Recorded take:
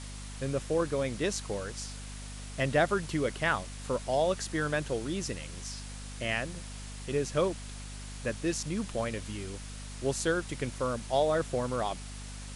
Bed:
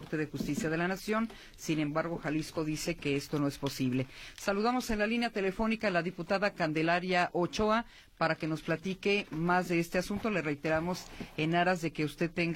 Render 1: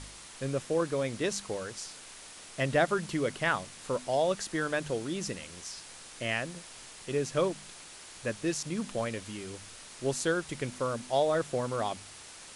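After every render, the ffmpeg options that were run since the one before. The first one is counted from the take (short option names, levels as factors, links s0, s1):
-af "bandreject=f=50:t=h:w=4,bandreject=f=100:t=h:w=4,bandreject=f=150:t=h:w=4,bandreject=f=200:t=h:w=4,bandreject=f=250:t=h:w=4"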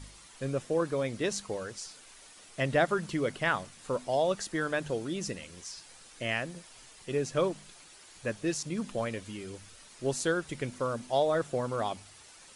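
-af "afftdn=nr=8:nf=-49"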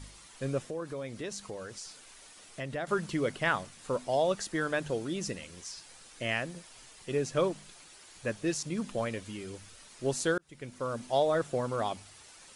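-filter_complex "[0:a]asettb=1/sr,asplit=3[s0][s1][s2];[s0]atrim=end=0.704[s3];[s1]atrim=start=0.7:end=2.87,asetpts=PTS-STARTPTS,afade=t=in:d=0.004:c=qsin,afade=t=out:st=2.166:d=0.004:c=qsin,acompressor=threshold=0.01:ratio=2:attack=3.2:release=140:knee=1:detection=peak[s4];[s2]atrim=start=2.866[s5];[s3][s4]acrossfade=d=0.004:c1=hsin:c2=qsin[s6];[s6][s5]acrossfade=d=0.004:c1=qsin:c2=hsin,asplit=2[s7][s8];[s7]atrim=end=10.38,asetpts=PTS-STARTPTS,afade=t=out:st=10.376:d=0.004:c=hsin[s9];[s8]atrim=start=10.38,asetpts=PTS-STARTPTS,afade=t=in:d=0.66[s10];[s9][s10]concat=n=2:v=0:a=1"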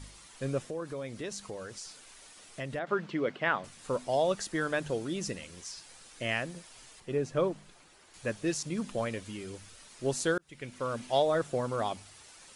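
-filter_complex "[0:a]asettb=1/sr,asplit=3[s0][s1][s2];[s0]atrim=end=2.794[s3];[s1]atrim=start=2.79:end=3.64,asetpts=PTS-STARTPTS,afade=t=in:d=0.004:c=qsin,afade=t=out:st=0.846:d=0.004:c=qsin,highpass=190,lowpass=3100[s4];[s2]atrim=start=3.636[s5];[s3][s4]acrossfade=d=0.004:c1=hsin:c2=qsin[s6];[s6][s5]acrossfade=d=0.004:c1=qsin:c2=hsin,asettb=1/sr,asplit=3[s7][s8][s9];[s7]atrim=end=7.004[s10];[s8]atrim=start=7:end=8.14,asetpts=PTS-STARTPTS,afade=t=in:d=0.004:c=qsin,afade=t=out:st=1.136:d=0.004:c=qsin,highshelf=f=2500:g=-9.5[s11];[s9]atrim=start=8.136[s12];[s10][s11]acrossfade=d=0.004:c1=hsin:c2=qsin[s13];[s13][s12]acrossfade=d=0.004:c1=qsin:c2=hsin,asettb=1/sr,asplit=3[s14][s15][s16];[s14]atrim=end=10.484[s17];[s15]atrim=start=10.48:end=11.22,asetpts=PTS-STARTPTS,afade=t=in:d=0.004:c=qsin,afade=t=out:st=0.736:d=0.004:c=qsin,equalizer=f=2500:w=1:g=5.5[s18];[s16]atrim=start=11.216[s19];[s17][s18]acrossfade=d=0.004:c1=hsin:c2=qsin[s20];[s20][s19]acrossfade=d=0.004:c1=qsin:c2=hsin"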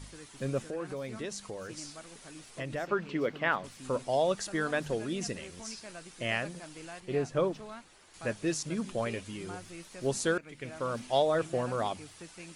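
-filter_complex "[1:a]volume=0.141[s0];[0:a][s0]amix=inputs=2:normalize=0"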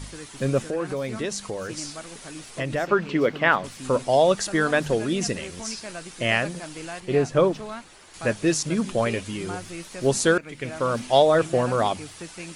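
-af "volume=2.99"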